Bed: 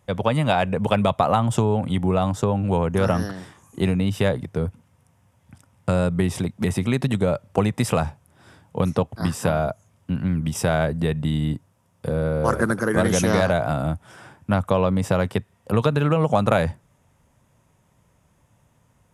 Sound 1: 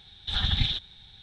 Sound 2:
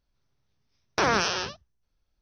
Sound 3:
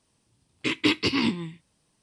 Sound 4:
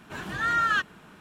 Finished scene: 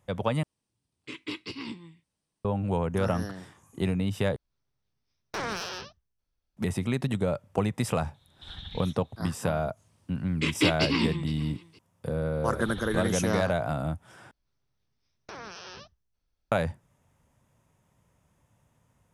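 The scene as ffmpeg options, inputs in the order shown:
-filter_complex "[3:a]asplit=2[a][b];[2:a]asplit=2[c][d];[1:a]asplit=2[e][f];[0:a]volume=-6.5dB[g];[c]asoftclip=type=tanh:threshold=-20dB[h];[b]aecho=1:1:465|930:0.1|0.029[i];[f]acrossover=split=3000[j][k];[k]acompressor=threshold=-34dB:ratio=4:attack=1:release=60[l];[j][l]amix=inputs=2:normalize=0[m];[d]acompressor=threshold=-33dB:ratio=10:attack=1.1:release=159:knee=6:detection=peak[n];[g]asplit=4[o][p][q][r];[o]atrim=end=0.434[s];[a]atrim=end=2.02,asetpts=PTS-STARTPTS,volume=-14dB[t];[p]atrim=start=2.446:end=4.364[u];[h]atrim=end=2.21,asetpts=PTS-STARTPTS,volume=-6.5dB[v];[q]atrim=start=6.566:end=14.314[w];[n]atrim=end=2.21,asetpts=PTS-STARTPTS,volume=-4dB[x];[r]atrim=start=16.516[y];[e]atrim=end=1.22,asetpts=PTS-STARTPTS,volume=-16dB,afade=t=in:d=0.004:c=hsin,afade=t=out:st=1.216:d=0.004:c=hsin,adelay=8140[z];[i]atrim=end=2.02,asetpts=PTS-STARTPTS,volume=-2dB,afade=t=in:d=0.004:c=hsin,afade=t=out:st=2.016:d=0.004:c=hsin,adelay=9770[aa];[m]atrim=end=1.22,asetpts=PTS-STARTPTS,volume=-14dB,afade=t=in:d=0.004:c=hsin,afade=t=out:st=1.216:d=0.004:c=hsin,adelay=12330[ab];[s][t]acrossfade=d=0.004:c1=hsin:c2=hsin[ac];[ac][u]acrossfade=d=0.004:c1=hsin:c2=hsin[ad];[ad][v]acrossfade=d=0.004:c1=hsin:c2=hsin[ae];[ae][w]acrossfade=d=0.004:c1=hsin:c2=hsin[af];[af][x]acrossfade=d=0.004:c1=hsin:c2=hsin[ag];[ag][y]acrossfade=d=0.004:c1=hsin:c2=hsin[ah];[ah][z][aa][ab]amix=inputs=4:normalize=0"

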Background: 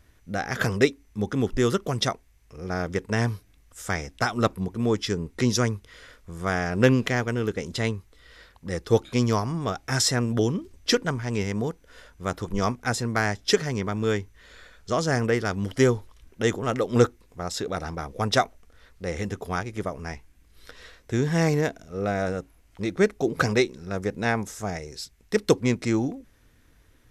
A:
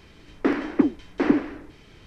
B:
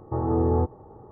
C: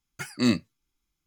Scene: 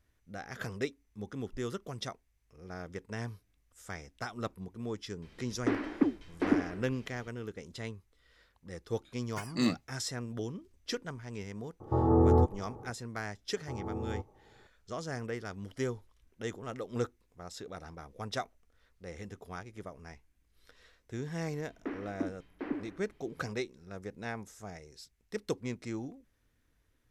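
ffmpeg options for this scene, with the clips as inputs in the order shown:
-filter_complex "[1:a]asplit=2[a][b];[2:a]asplit=2[c][d];[0:a]volume=-14.5dB[e];[d]equalizer=f=770:t=o:w=0.77:g=2.5[f];[b]lowpass=3.5k[g];[a]atrim=end=2.06,asetpts=PTS-STARTPTS,volume=-8dB,afade=t=in:d=0.004:c=hsin,afade=t=out:st=2.056:d=0.004:c=hsin,adelay=5220[h];[3:a]atrim=end=1.26,asetpts=PTS-STARTPTS,volume=-6.5dB,afade=t=in:d=0.004:c=hsin,afade=t=out:st=1.256:d=0.004:c=hsin,adelay=9170[i];[c]atrim=end=1.11,asetpts=PTS-STARTPTS,volume=-1dB,afade=t=in:d=0.004:c=hsin,afade=t=out:st=1.106:d=0.004:c=hsin,adelay=11800[j];[f]atrim=end=1.11,asetpts=PTS-STARTPTS,volume=-16dB,afade=t=in:d=0.004:c=hsin,afade=t=out:st=1.106:d=0.004:c=hsin,adelay=13560[k];[g]atrim=end=2.06,asetpts=PTS-STARTPTS,volume=-16.5dB,afade=t=in:d=0.004:c=hsin,afade=t=out:st=2.056:d=0.004:c=hsin,adelay=21410[l];[e][h][i][j][k][l]amix=inputs=6:normalize=0"

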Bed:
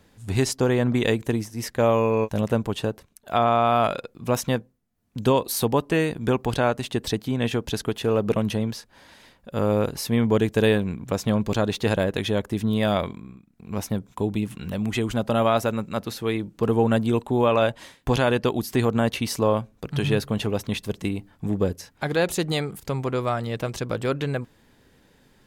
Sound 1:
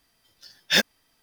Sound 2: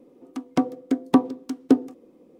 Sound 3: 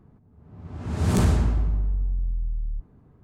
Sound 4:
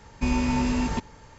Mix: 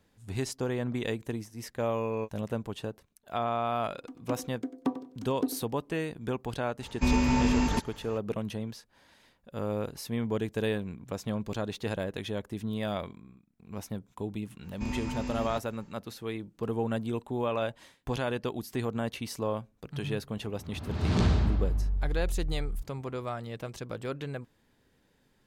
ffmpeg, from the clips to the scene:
-filter_complex "[4:a]asplit=2[a][b];[0:a]volume=-10.5dB[c];[2:a]aecho=1:1:94|188:0.211|0.0338[d];[3:a]lowpass=f=4.2k:t=q:w=1.8[e];[d]atrim=end=2.39,asetpts=PTS-STARTPTS,volume=-13dB,afade=t=in:d=0.004:c=hsin,afade=t=out:st=2.386:d=0.004:c=hsin,adelay=3720[f];[a]atrim=end=1.38,asetpts=PTS-STARTPTS,volume=-0.5dB,afade=t=in:d=0.004:c=hsin,afade=t=out:st=1.376:d=0.004:c=hsin,adelay=6800[g];[b]atrim=end=1.38,asetpts=PTS-STARTPTS,volume=-11dB,afade=t=in:d=0.1,afade=t=out:st=1.28:d=0.1,adelay=14590[h];[e]atrim=end=3.23,asetpts=PTS-STARTPTS,volume=-4.5dB,afade=t=in:d=0.004:c=hsin,afade=t=out:st=3.226:d=0.004:c=hsin,adelay=20020[i];[c][f][g][h][i]amix=inputs=5:normalize=0"

